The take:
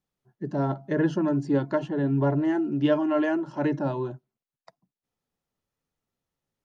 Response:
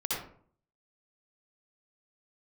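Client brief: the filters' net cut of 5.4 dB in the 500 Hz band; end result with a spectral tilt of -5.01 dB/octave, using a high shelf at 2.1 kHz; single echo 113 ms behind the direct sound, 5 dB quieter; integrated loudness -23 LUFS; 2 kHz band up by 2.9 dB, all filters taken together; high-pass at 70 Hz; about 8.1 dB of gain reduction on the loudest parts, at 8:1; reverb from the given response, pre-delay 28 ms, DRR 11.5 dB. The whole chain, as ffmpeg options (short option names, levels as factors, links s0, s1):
-filter_complex "[0:a]highpass=70,equalizer=f=500:t=o:g=-7.5,equalizer=f=2000:t=o:g=6,highshelf=f=2100:g=-3.5,acompressor=threshold=0.0355:ratio=8,aecho=1:1:113:0.562,asplit=2[s0][s1];[1:a]atrim=start_sample=2205,adelay=28[s2];[s1][s2]afir=irnorm=-1:irlink=0,volume=0.133[s3];[s0][s3]amix=inputs=2:normalize=0,volume=3.16"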